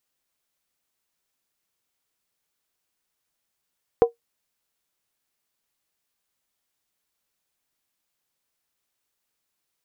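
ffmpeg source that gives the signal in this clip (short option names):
-f lavfi -i "aevalsrc='0.447*pow(10,-3*t/0.13)*sin(2*PI*468*t)+0.141*pow(10,-3*t/0.103)*sin(2*PI*746*t)+0.0447*pow(10,-3*t/0.089)*sin(2*PI*999.6*t)+0.0141*pow(10,-3*t/0.086)*sin(2*PI*1074.5*t)+0.00447*pow(10,-3*t/0.08)*sin(2*PI*1241.6*t)':d=0.63:s=44100"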